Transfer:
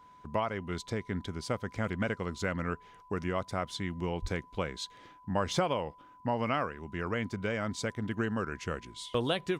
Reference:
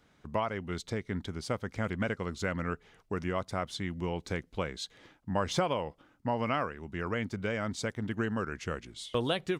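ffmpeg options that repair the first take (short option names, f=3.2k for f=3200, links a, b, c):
-filter_complex "[0:a]bandreject=f=1k:w=30,asplit=3[a][b][c];[a]afade=t=out:st=4.21:d=0.02[d];[b]highpass=f=140:w=0.5412,highpass=f=140:w=1.3066,afade=t=in:st=4.21:d=0.02,afade=t=out:st=4.33:d=0.02[e];[c]afade=t=in:st=4.33:d=0.02[f];[d][e][f]amix=inputs=3:normalize=0"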